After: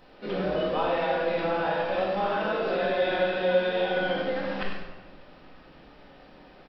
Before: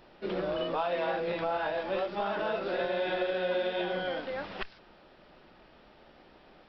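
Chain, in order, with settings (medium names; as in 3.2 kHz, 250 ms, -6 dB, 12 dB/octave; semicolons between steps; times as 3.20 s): on a send: delay 97 ms -8.5 dB; on the sum: simulated room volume 730 m³, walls mixed, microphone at 2 m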